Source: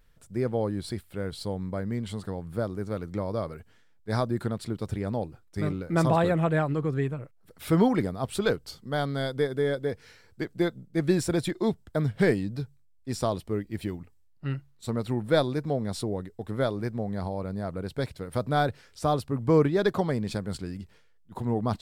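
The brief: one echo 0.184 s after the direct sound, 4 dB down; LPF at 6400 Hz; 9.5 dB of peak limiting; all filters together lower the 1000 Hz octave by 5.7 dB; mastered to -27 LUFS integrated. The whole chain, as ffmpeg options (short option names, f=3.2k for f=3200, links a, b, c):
-af "lowpass=6.4k,equalizer=f=1k:t=o:g=-8.5,alimiter=limit=-20.5dB:level=0:latency=1,aecho=1:1:184:0.631,volume=4dB"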